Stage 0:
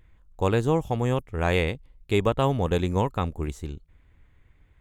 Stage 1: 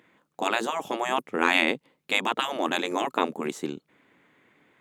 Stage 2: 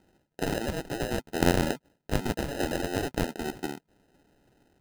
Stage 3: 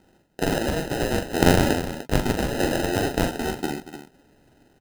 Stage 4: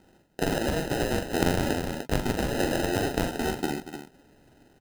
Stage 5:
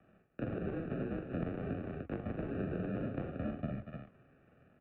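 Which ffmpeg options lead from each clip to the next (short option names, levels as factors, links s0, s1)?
-af "afftfilt=real='re*lt(hypot(re,im),0.178)':imag='im*lt(hypot(re,im),0.178)':win_size=1024:overlap=0.75,highpass=f=210:w=0.5412,highpass=f=210:w=1.3066,highshelf=f=5600:g=-5,volume=2.66"
-af "acrusher=samples=39:mix=1:aa=0.000001,volume=0.75"
-af "aecho=1:1:42|235|298:0.501|0.188|0.266,volume=1.88"
-af "acompressor=threshold=0.0708:ratio=2.5"
-filter_complex "[0:a]flanger=delay=2.2:depth=10:regen=86:speed=0.56:shape=sinusoidal,acrossover=split=280|750[s0][s1][s2];[s0]acompressor=threshold=0.0158:ratio=4[s3];[s1]acompressor=threshold=0.0158:ratio=4[s4];[s2]acompressor=threshold=0.00316:ratio=4[s5];[s3][s4][s5]amix=inputs=3:normalize=0,highpass=f=250:t=q:w=0.5412,highpass=f=250:t=q:w=1.307,lowpass=f=2700:t=q:w=0.5176,lowpass=f=2700:t=q:w=0.7071,lowpass=f=2700:t=q:w=1.932,afreqshift=-160"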